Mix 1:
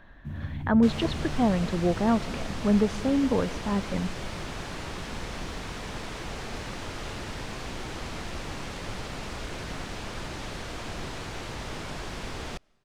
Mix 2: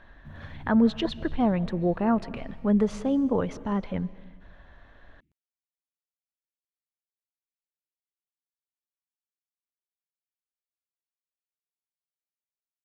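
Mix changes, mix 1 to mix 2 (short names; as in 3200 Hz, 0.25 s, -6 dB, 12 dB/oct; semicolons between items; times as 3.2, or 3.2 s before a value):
first sound -9.0 dB; second sound: muted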